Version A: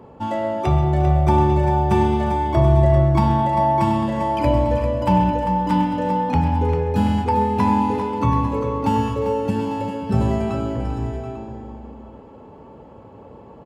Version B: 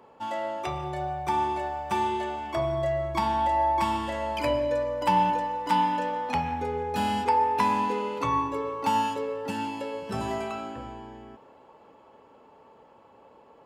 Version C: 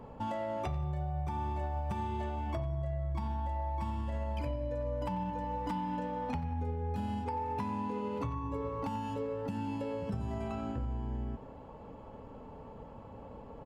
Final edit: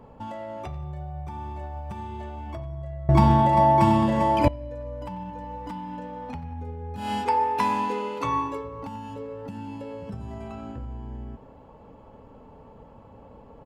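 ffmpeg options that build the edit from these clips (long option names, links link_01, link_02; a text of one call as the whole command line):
ffmpeg -i take0.wav -i take1.wav -i take2.wav -filter_complex "[2:a]asplit=3[link_01][link_02][link_03];[link_01]atrim=end=3.092[link_04];[0:a]atrim=start=3.088:end=4.482[link_05];[link_02]atrim=start=4.478:end=7.13[link_06];[1:a]atrim=start=6.97:end=8.68[link_07];[link_03]atrim=start=8.52[link_08];[link_04][link_05]acrossfade=duration=0.004:curve1=hsin:curve2=hsin[link_09];[link_09][link_06]acrossfade=duration=0.004:curve1=hsin:curve2=hsin[link_10];[link_10][link_07]acrossfade=duration=0.16:curve1=tri:curve2=tri[link_11];[link_11][link_08]acrossfade=duration=0.16:curve1=tri:curve2=tri" out.wav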